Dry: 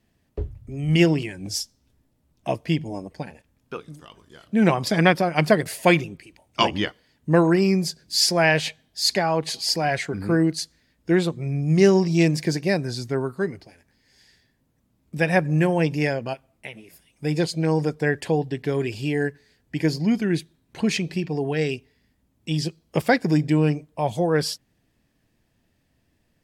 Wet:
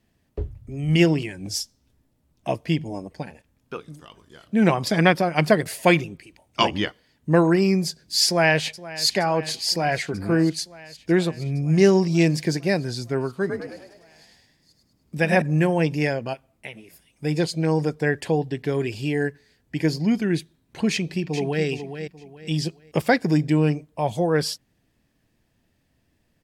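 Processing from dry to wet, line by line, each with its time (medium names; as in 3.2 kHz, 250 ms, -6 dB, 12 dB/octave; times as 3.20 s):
8.26–9.08 s: echo throw 470 ms, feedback 80%, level -17.5 dB
13.31–15.42 s: frequency-shifting echo 102 ms, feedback 49%, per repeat +43 Hz, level -5 dB
20.91–21.65 s: echo throw 420 ms, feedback 30%, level -9 dB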